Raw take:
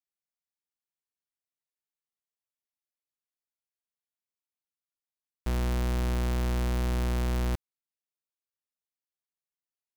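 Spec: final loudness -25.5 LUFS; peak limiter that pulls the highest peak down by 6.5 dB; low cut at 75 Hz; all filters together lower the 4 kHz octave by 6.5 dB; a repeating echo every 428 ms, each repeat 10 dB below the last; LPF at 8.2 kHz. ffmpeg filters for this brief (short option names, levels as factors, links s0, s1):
-af "highpass=75,lowpass=8200,equalizer=f=4000:t=o:g=-8.5,alimiter=level_in=1.41:limit=0.0631:level=0:latency=1,volume=0.708,aecho=1:1:428|856|1284|1712:0.316|0.101|0.0324|0.0104,volume=5.31"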